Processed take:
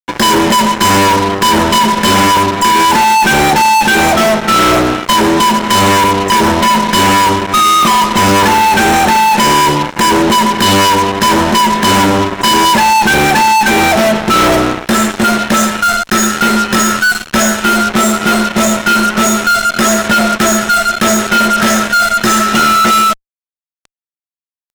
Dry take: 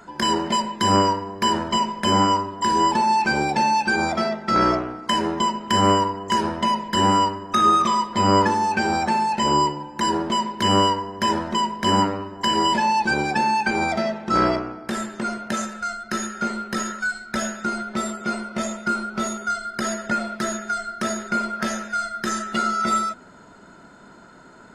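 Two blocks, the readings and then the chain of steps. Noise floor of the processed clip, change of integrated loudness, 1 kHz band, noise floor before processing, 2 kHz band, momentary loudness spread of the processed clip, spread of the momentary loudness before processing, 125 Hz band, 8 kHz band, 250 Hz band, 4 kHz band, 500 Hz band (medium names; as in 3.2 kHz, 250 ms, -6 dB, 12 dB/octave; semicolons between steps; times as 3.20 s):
under -85 dBFS, +12.5 dB, +11.5 dB, -47 dBFS, +14.5 dB, 3 LU, 9 LU, +11.0 dB, +17.0 dB, +12.0 dB, +13.0 dB, +12.0 dB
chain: fuzz box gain 34 dB, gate -36 dBFS; band-stop 4.7 kHz, Q 15; trim +6 dB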